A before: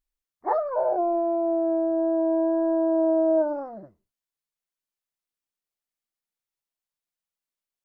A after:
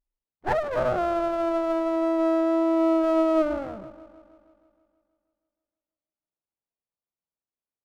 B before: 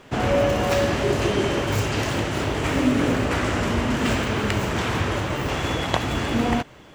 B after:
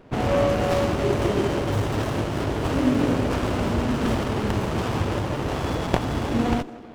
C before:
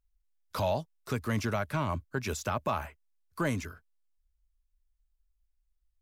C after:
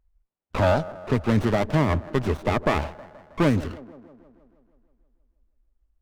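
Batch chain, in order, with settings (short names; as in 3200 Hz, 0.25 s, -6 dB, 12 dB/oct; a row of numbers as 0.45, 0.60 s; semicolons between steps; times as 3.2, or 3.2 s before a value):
band-limited delay 0.159 s, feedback 62%, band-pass 430 Hz, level -15.5 dB; low-pass opened by the level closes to 1500 Hz, open at -21 dBFS; running maximum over 17 samples; match loudness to -24 LUFS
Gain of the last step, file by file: +0.5, 0.0, +10.5 dB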